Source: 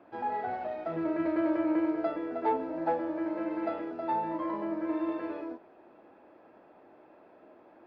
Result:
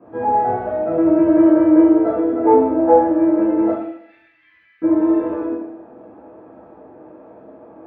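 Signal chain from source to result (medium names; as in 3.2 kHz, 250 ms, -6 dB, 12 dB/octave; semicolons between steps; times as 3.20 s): 3.72–4.82 s: steep high-pass 1.9 kHz 48 dB/octave; crackle 22 per s -55 dBFS; reverberation RT60 0.70 s, pre-delay 3 ms, DRR -12 dB; trim -12.5 dB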